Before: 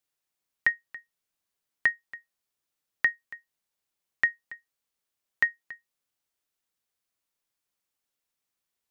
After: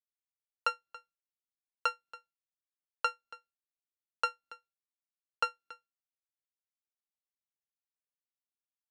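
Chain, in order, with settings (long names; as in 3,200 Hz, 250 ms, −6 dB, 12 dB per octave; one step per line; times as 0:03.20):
samples sorted by size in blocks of 32 samples
low-pass filter 3,800 Hz 12 dB per octave
downward expander −54 dBFS
level −6 dB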